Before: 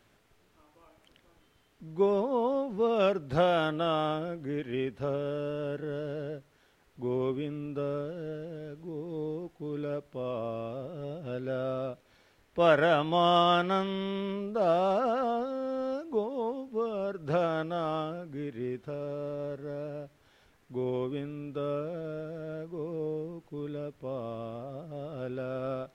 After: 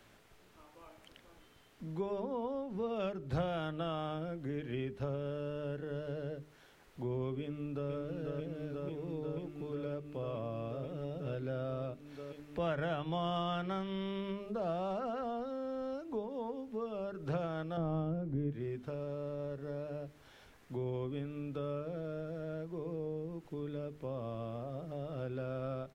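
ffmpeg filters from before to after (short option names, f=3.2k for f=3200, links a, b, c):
-filter_complex "[0:a]asplit=2[a][b];[b]afade=t=in:st=7.4:d=0.01,afade=t=out:st=7.91:d=0.01,aecho=0:1:490|980|1470|1960|2450|2940|3430|3920|4410|4900|5390|5880:0.630957|0.536314|0.455867|0.387487|0.329364|0.279959|0.237965|0.20227|0.17193|0.14614|0.124219|0.105586[c];[a][c]amix=inputs=2:normalize=0,asettb=1/sr,asplit=3[d][e][f];[d]atrim=end=17.774[g];[e]atrim=start=17.77:end=18.51,asetpts=PTS-STARTPTS,afade=t=in:d=0.004:c=qsin,afade=t=out:st=0.736:d=0.004:c=qsin,tiltshelf=f=880:g=9.5[h];[f]atrim=start=18.506[i];[g][h]acrossfade=d=0.004:c1=hsin:c2=qsin[j];[j][i]acrossfade=d=0.004:c1=qsin:c2=hsin,bandreject=f=50:t=h:w=6,bandreject=f=100:t=h:w=6,bandreject=f=150:t=h:w=6,bandreject=f=200:t=h:w=6,bandreject=f=250:t=h:w=6,bandreject=f=300:t=h:w=6,bandreject=f=350:t=h:w=6,bandreject=f=400:t=h:w=6,bandreject=f=450:t=h:w=6,acrossover=split=140[k][l];[l]acompressor=threshold=-46dB:ratio=2.5[m];[k][m]amix=inputs=2:normalize=0,volume=3.5dB"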